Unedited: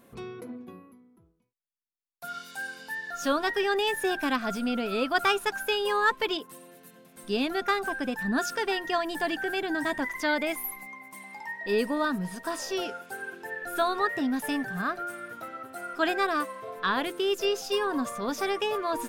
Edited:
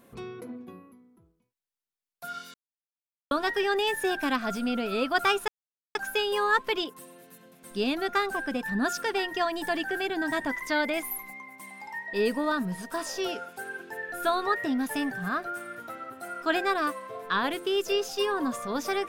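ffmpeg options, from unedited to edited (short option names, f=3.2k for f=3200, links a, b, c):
-filter_complex "[0:a]asplit=4[a][b][c][d];[a]atrim=end=2.54,asetpts=PTS-STARTPTS,afade=t=out:st=2.536:d=0.004:c=hsin[e];[b]atrim=start=2.54:end=3.31,asetpts=PTS-STARTPTS,volume=0[f];[c]atrim=start=3.31:end=5.48,asetpts=PTS-STARTPTS,afade=t=in:d=0.004:c=hsin,afade=t=out:st=2.166:d=0.004:c=hsin,apad=pad_dur=0.47[g];[d]atrim=start=5.48,asetpts=PTS-STARTPTS,afade=t=in:d=0.004:c=hsin[h];[e][f][g][h]concat=n=4:v=0:a=1"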